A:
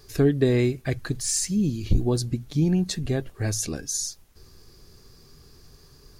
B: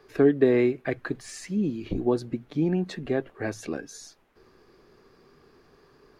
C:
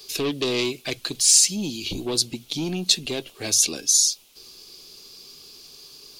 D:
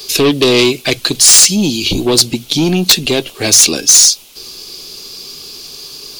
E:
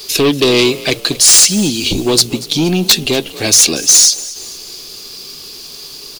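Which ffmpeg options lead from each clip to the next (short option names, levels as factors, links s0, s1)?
-filter_complex "[0:a]acrossover=split=220 2700:gain=0.112 1 0.0794[s0][s1][s2];[s0][s1][s2]amix=inputs=3:normalize=0,volume=1.41"
-af "asoftclip=type=tanh:threshold=0.1,aexciter=amount=13.4:drive=8.1:freq=2800,volume=0.891"
-af "aeval=exprs='0.841*sin(PI/2*3.55*val(0)/0.841)':c=same"
-filter_complex "[0:a]acrusher=bits=7:dc=4:mix=0:aa=0.000001,asplit=5[s0][s1][s2][s3][s4];[s1]adelay=236,afreqshift=46,volume=0.126[s5];[s2]adelay=472,afreqshift=92,volume=0.0569[s6];[s3]adelay=708,afreqshift=138,volume=0.0254[s7];[s4]adelay=944,afreqshift=184,volume=0.0115[s8];[s0][s5][s6][s7][s8]amix=inputs=5:normalize=0,volume=0.891"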